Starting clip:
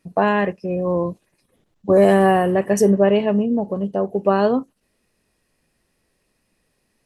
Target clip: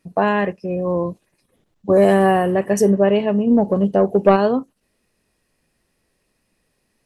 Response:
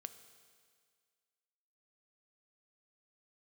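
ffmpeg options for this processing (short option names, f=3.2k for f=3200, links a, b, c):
-filter_complex "[0:a]asplit=3[a][b][c];[a]afade=t=out:st=3.46:d=0.02[d];[b]acontrast=64,afade=t=in:st=3.46:d=0.02,afade=t=out:st=4.35:d=0.02[e];[c]afade=t=in:st=4.35:d=0.02[f];[d][e][f]amix=inputs=3:normalize=0"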